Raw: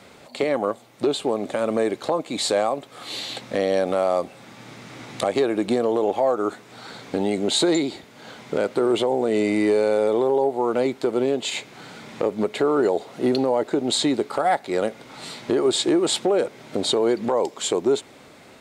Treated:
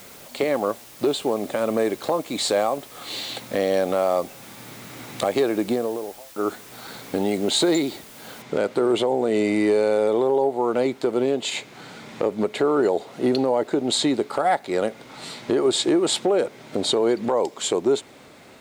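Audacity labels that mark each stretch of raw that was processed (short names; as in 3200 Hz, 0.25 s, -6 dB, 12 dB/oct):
5.510000	6.360000	studio fade out
8.420000	8.420000	noise floor step -46 dB -68 dB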